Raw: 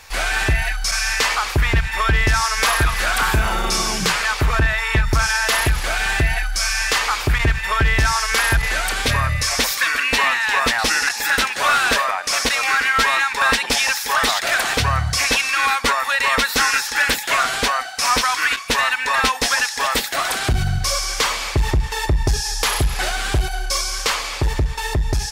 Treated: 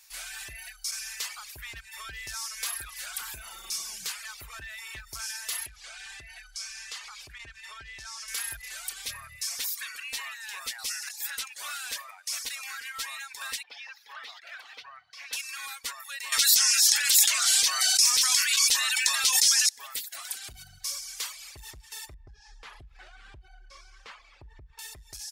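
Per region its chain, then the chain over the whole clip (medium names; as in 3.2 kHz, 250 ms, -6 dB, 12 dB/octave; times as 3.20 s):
5.66–8.28 s: compression 2:1, threshold -19 dBFS + low-pass 6.8 kHz
13.63–15.33 s: high-pass 440 Hz + distance through air 310 m
16.32–19.69 s: peaking EQ 6 kHz +12 dB 2.4 oct + hum notches 60/120/180/240/300/360/420/480/540 Hz + level flattener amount 100%
22.14–24.79 s: low-pass 1.8 kHz + bass shelf 310 Hz +10 dB + compression 5:1, threshold -15 dBFS
whole clip: pre-emphasis filter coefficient 0.97; reverb removal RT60 0.84 s; bass shelf 130 Hz +8.5 dB; trim -8.5 dB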